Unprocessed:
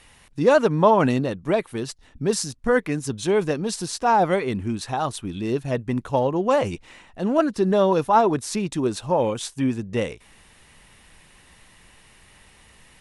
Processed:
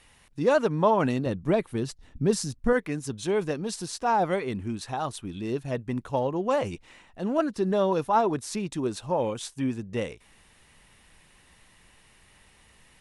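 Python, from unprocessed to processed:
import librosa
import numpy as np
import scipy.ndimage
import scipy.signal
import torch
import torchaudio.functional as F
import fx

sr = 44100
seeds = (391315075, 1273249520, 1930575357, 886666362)

y = fx.low_shelf(x, sr, hz=350.0, db=8.5, at=(1.26, 2.73))
y = F.gain(torch.from_numpy(y), -5.5).numpy()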